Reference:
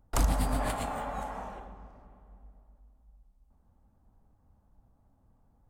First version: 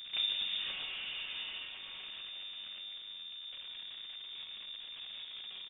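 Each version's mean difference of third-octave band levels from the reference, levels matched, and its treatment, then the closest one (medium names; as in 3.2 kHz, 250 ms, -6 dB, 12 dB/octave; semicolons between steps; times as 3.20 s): 15.5 dB: jump at every zero crossing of -30.5 dBFS; feedback comb 92 Hz, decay 1.1 s, harmonics odd, mix 80%; delay 1162 ms -13.5 dB; frequency inversion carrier 3.6 kHz; trim +1 dB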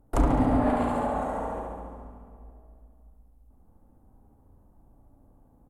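4.5 dB: FFT filter 200 Hz 0 dB, 290 Hz +8 dB, 5.1 kHz -12 dB, 11 kHz +4 dB; flutter echo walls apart 12 m, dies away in 1.3 s; low-pass that closes with the level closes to 2.9 kHz, closed at -22 dBFS; doubling 34 ms -12 dB; trim +3 dB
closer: second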